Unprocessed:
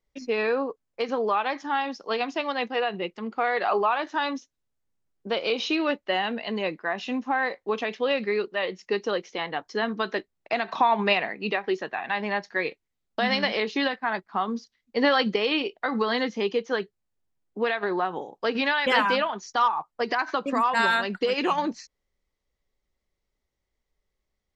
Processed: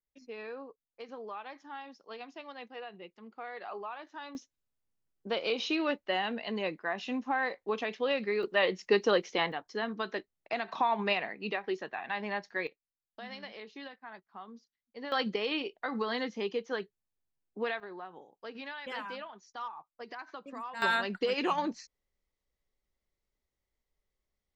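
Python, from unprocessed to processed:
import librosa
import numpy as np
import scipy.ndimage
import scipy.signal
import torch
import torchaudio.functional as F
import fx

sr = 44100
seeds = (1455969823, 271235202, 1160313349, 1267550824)

y = fx.gain(x, sr, db=fx.steps((0.0, -17.5), (4.35, -5.5), (8.43, 1.0), (9.52, -7.5), (12.67, -20.0), (15.12, -8.0), (17.8, -18.0), (20.82, -5.5)))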